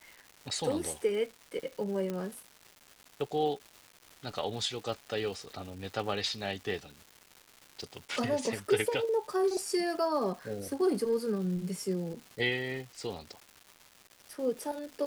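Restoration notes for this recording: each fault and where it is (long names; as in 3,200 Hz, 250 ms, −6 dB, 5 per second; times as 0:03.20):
surface crackle 460 per second −42 dBFS
0:02.10: click −22 dBFS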